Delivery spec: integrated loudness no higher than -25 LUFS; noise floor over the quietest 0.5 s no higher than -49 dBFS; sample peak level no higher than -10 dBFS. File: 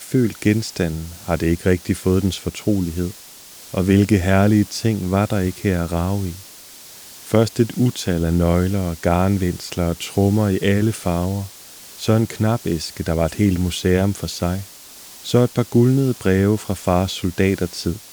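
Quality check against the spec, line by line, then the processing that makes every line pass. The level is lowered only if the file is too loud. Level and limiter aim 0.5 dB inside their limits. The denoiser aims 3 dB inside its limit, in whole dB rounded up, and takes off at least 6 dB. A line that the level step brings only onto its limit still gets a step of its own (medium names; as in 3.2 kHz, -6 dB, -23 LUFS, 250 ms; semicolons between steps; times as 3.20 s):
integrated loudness -19.5 LUFS: fail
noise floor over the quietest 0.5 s -41 dBFS: fail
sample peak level -2.5 dBFS: fail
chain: noise reduction 6 dB, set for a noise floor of -41 dBFS; trim -6 dB; peak limiter -10.5 dBFS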